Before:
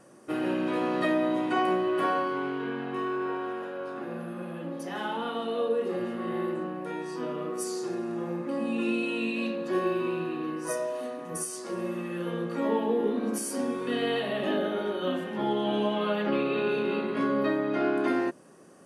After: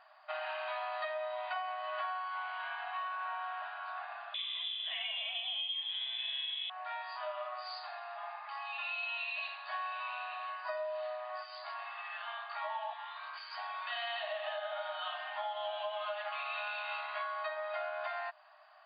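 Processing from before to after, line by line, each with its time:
4.34–6.7 inverted band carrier 3700 Hz
12.93–13.58 band shelf 530 Hz -15.5 dB 1.3 oct
whole clip: FFT band-pass 600–4900 Hz; compressor 10:1, threshold -36 dBFS; gain +1 dB

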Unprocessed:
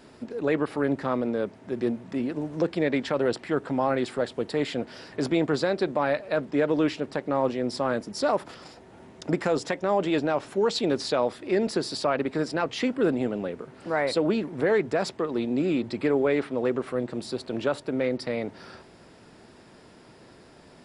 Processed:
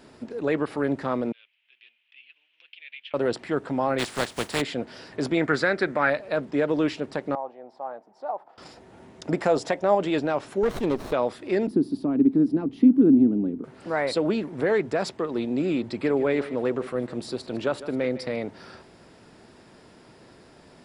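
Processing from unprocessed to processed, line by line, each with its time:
1.32–3.14 Butterworth band-pass 2800 Hz, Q 3.2
3.98–4.6 spectral contrast lowered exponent 0.43
5.37–6.1 band shelf 1700 Hz +10.5 dB 1 oct
7.35–8.58 band-pass 780 Hz, Q 4.9
9.35–9.95 bell 680 Hz +7 dB
10.63–11.13 running maximum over 17 samples
11.67–13.64 EQ curve 120 Hz 0 dB, 180 Hz +5 dB, 280 Hz +14 dB, 530 Hz -12 dB, 810 Hz -11 dB, 1900 Hz -20 dB, 3400 Hz -18 dB, 7800 Hz -25 dB, 12000 Hz -2 dB
15.86–18.36 echo 0.154 s -15 dB

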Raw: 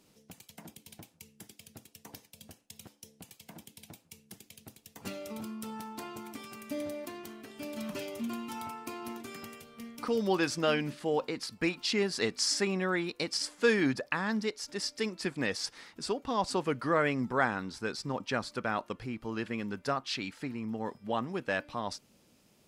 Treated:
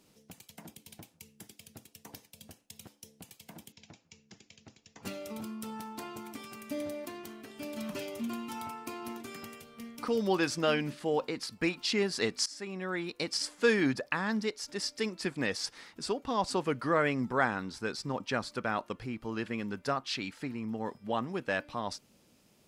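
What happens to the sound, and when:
3.72–5.03 rippled Chebyshev low-pass 7200 Hz, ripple 3 dB
12.46–13.29 fade in, from -20 dB

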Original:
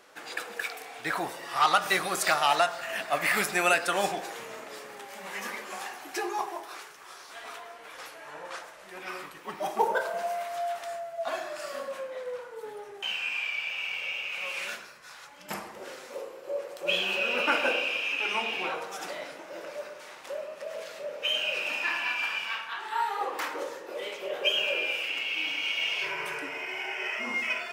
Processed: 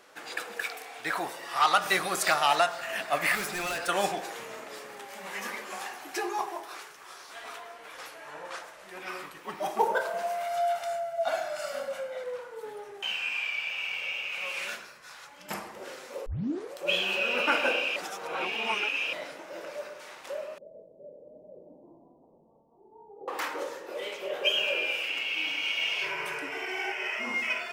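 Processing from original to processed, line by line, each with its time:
0.79–1.76 low shelf 210 Hz -7.5 dB
3.35–3.89 overloaded stage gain 30.5 dB
10.43–12.24 comb 1.4 ms, depth 68%
16.26 tape start 0.47 s
17.96–19.13 reverse
20.58–23.28 Gaussian blur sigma 19 samples
26.51–26.92 comb 2.6 ms, depth 96%

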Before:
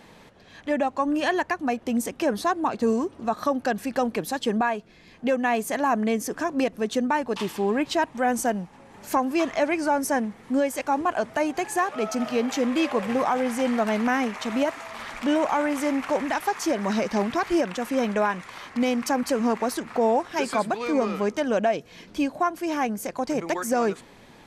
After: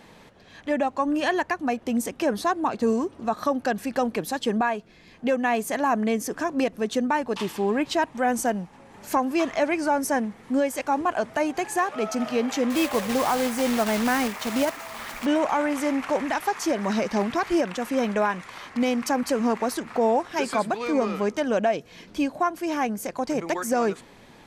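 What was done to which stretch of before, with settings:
12.7–15.26 block floating point 3-bit

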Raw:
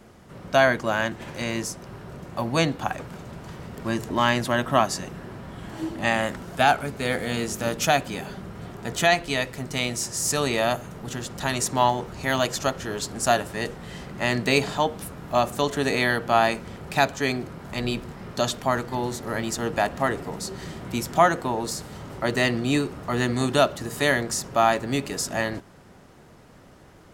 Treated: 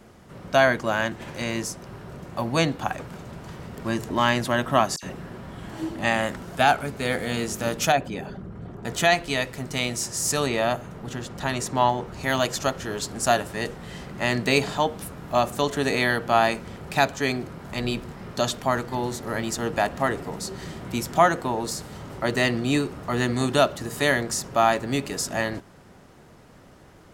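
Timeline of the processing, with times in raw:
4.96–5.38 dispersion lows, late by 67 ms, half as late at 2900 Hz
7.92–8.85 formant sharpening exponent 1.5
10.46–12.13 high shelf 4400 Hz -7.5 dB

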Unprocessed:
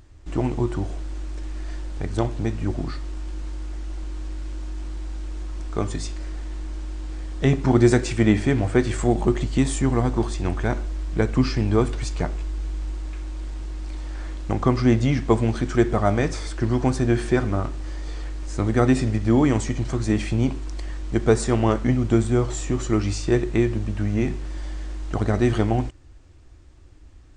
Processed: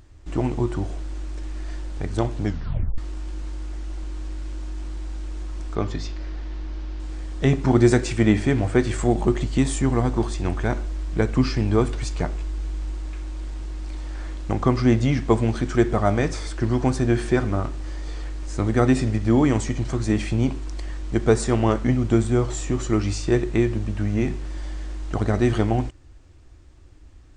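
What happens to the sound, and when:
2.43 tape stop 0.55 s
5.75–7 LPF 5500 Hz 24 dB/oct

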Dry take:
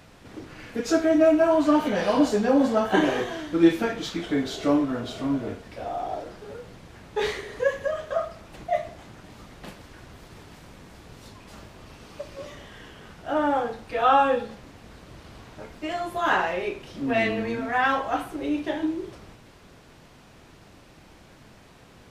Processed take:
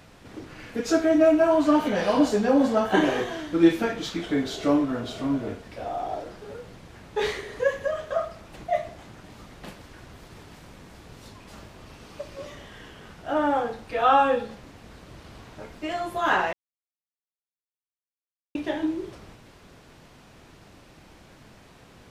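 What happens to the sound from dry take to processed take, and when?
16.53–18.55 mute

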